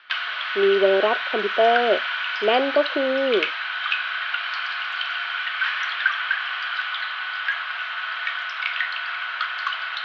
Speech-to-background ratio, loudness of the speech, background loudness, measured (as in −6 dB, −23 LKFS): 3.5 dB, −21.5 LKFS, −25.0 LKFS